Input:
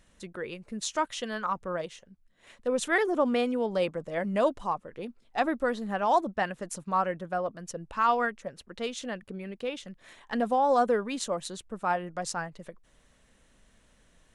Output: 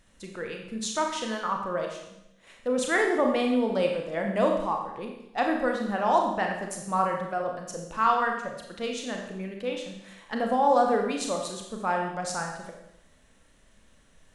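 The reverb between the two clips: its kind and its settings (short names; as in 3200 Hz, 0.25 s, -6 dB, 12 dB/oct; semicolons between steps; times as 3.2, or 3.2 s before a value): Schroeder reverb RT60 0.86 s, combs from 28 ms, DRR 1.5 dB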